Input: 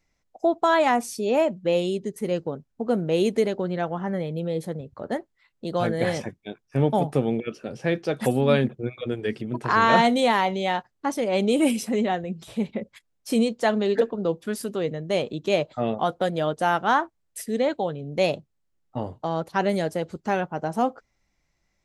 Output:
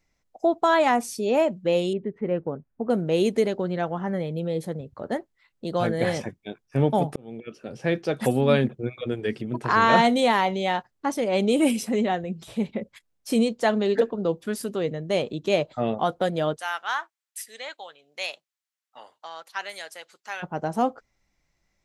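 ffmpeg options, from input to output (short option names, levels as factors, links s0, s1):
-filter_complex "[0:a]asettb=1/sr,asplit=3[s0][s1][s2];[s0]atrim=end=1.934[s3];[s1]atrim=start=1.93:end=2.9,asetpts=PTS-STARTPTS,afade=t=in:d=0.004:c=qsin,afade=t=out:st=0.966:d=0.004:c=qsin,lowpass=f=2200:w=0.5412,lowpass=f=2200:w=1.3066[s4];[s2]atrim=start=2.896[s5];[s3][s4]acrossfade=d=0.004:c1=hsin:c2=qsin[s6];[s6][s5]acrossfade=d=0.004:c1=qsin:c2=hsin,asplit=3[s7][s8][s9];[s7]afade=t=out:st=16.56:d=0.02[s10];[s8]highpass=1500,afade=t=in:st=16.56:d=0.02,afade=t=out:st=20.42:d=0.02[s11];[s9]afade=t=in:st=20.42:d=0.02[s12];[s10][s11][s12]amix=inputs=3:normalize=0,asplit=2[s13][s14];[s13]atrim=end=7.16,asetpts=PTS-STARTPTS,afade=t=out:st=7.156:d=0.004:c=hsin[s15];[s14]atrim=start=7.16,asetpts=PTS-STARTPTS,afade=t=in:d=0.74[s16];[s15][s16]concat=n=2:v=0:a=1"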